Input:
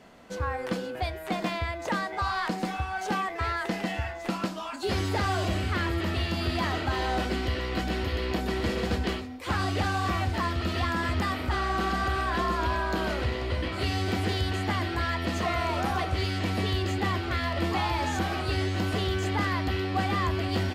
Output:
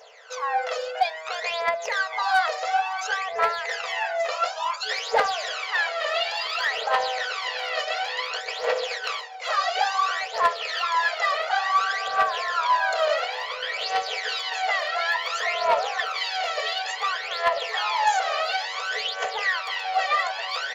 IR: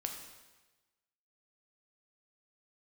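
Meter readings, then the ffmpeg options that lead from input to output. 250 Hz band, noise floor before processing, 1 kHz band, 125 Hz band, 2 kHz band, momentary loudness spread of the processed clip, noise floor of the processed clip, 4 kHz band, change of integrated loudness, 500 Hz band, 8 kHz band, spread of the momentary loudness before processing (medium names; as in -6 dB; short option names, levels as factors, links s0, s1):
under -25 dB, -37 dBFS, +6.5 dB, under -35 dB, +7.0 dB, 5 LU, -34 dBFS, +6.5 dB, +4.0 dB, +3.5 dB, +5.0 dB, 4 LU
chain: -filter_complex "[0:a]asplit=2[s0][s1];[s1]alimiter=level_in=1.26:limit=0.0631:level=0:latency=1:release=38,volume=0.794,volume=0.841[s2];[s0][s2]amix=inputs=2:normalize=0,bandreject=f=60:t=h:w=6,bandreject=f=120:t=h:w=6,bandreject=f=180:t=h:w=6,bandreject=f=240:t=h:w=6,bandreject=f=300:t=h:w=6,bandreject=f=360:t=h:w=6,bandreject=f=420:t=h:w=6,bandreject=f=480:t=h:w=6,bandreject=f=540:t=h:w=6,afftfilt=real='re*between(b*sr/4096,420,7400)':imag='im*between(b*sr/4096,420,7400)':win_size=4096:overlap=0.75,aphaser=in_gain=1:out_gain=1:delay=1.7:decay=0.75:speed=0.57:type=triangular,asoftclip=type=hard:threshold=0.251"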